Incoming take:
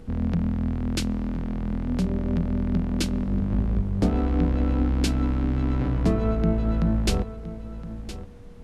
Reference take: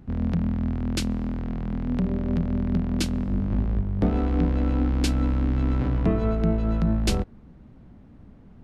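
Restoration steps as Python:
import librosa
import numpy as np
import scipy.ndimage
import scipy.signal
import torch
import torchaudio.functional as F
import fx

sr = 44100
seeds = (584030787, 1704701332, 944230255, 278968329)

y = fx.notch(x, sr, hz=480.0, q=30.0)
y = fx.noise_reduce(y, sr, print_start_s=8.12, print_end_s=8.62, reduce_db=12.0)
y = fx.fix_echo_inverse(y, sr, delay_ms=1016, level_db=-13.5)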